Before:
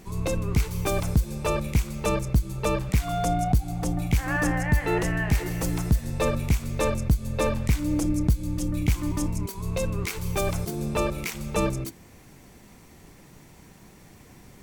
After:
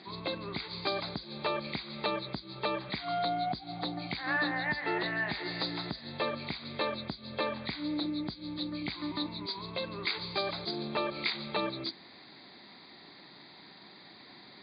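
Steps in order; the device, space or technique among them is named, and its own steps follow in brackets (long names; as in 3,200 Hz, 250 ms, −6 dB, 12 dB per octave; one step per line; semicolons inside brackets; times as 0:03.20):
hearing aid with frequency lowering (hearing-aid frequency compression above 3,100 Hz 4 to 1; downward compressor 3 to 1, threshold −27 dBFS, peak gain reduction 8.5 dB; loudspeaker in its box 310–6,700 Hz, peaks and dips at 480 Hz −8 dB, 2,000 Hz +4 dB, 3,000 Hz −6 dB, 5,800 Hz −5 dB)
level +1 dB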